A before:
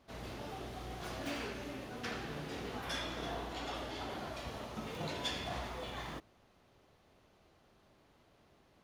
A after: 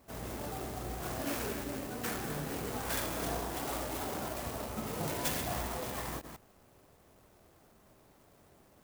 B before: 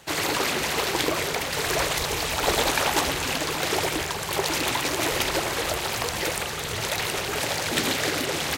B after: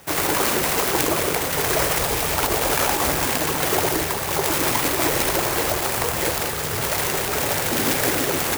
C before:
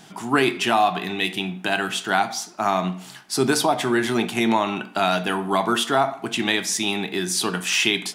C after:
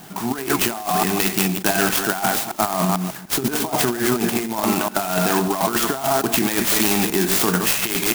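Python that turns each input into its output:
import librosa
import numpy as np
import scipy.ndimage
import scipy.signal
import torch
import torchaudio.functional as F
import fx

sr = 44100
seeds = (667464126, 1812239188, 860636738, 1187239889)

y = fx.reverse_delay(x, sr, ms=148, wet_db=-7.5)
y = fx.over_compress(y, sr, threshold_db=-23.0, ratio=-0.5)
y = fx.clock_jitter(y, sr, seeds[0], jitter_ms=0.077)
y = F.gain(torch.from_numpy(y), 4.0).numpy()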